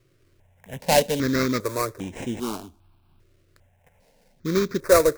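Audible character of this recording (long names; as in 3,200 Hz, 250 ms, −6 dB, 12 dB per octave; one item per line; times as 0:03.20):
aliases and images of a low sample rate 3,400 Hz, jitter 20%
notches that jump at a steady rate 2.5 Hz 220–4,500 Hz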